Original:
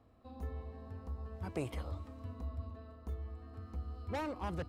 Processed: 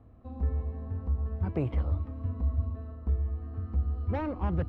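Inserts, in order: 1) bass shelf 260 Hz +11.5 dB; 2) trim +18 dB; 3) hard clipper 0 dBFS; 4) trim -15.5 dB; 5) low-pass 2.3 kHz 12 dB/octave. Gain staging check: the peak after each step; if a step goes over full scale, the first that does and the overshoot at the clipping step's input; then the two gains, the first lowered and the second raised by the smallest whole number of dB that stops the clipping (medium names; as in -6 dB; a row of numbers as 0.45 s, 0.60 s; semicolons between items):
-20.0 dBFS, -2.0 dBFS, -2.0 dBFS, -17.5 dBFS, -18.0 dBFS; nothing clips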